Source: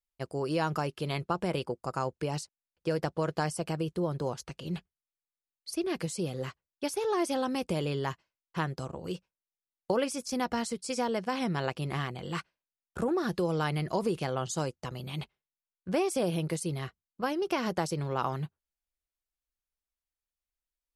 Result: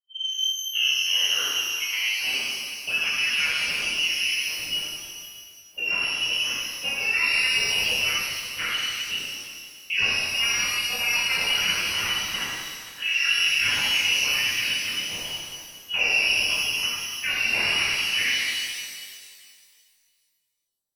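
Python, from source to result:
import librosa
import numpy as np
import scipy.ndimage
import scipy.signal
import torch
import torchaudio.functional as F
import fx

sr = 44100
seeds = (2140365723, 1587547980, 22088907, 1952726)

y = fx.tape_start_head(x, sr, length_s=2.37)
y = fx.freq_invert(y, sr, carrier_hz=3100)
y = fx.env_lowpass(y, sr, base_hz=670.0, full_db=-28.5)
y = fx.rev_shimmer(y, sr, seeds[0], rt60_s=2.0, semitones=12, shimmer_db=-8, drr_db=-10.5)
y = y * librosa.db_to_amplitude(-3.5)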